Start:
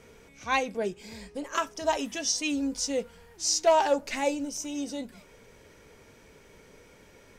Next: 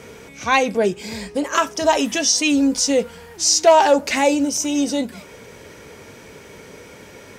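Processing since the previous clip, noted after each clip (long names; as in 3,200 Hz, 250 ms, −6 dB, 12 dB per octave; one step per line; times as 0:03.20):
high-pass filter 77 Hz
in parallel at +1.5 dB: brickwall limiter −25.5 dBFS, peak gain reduction 12.5 dB
on the sum: level +7 dB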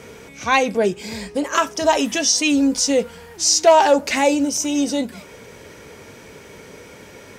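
no processing that can be heard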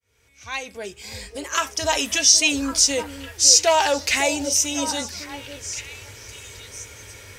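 fade in at the beginning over 2.02 s
drawn EQ curve 110 Hz 0 dB, 160 Hz −21 dB, 290 Hz −16 dB, 800 Hz −13 dB, 2,300 Hz −5 dB, 9,200 Hz −2 dB
echo through a band-pass that steps 553 ms, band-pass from 440 Hz, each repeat 1.4 octaves, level −7 dB
level +6.5 dB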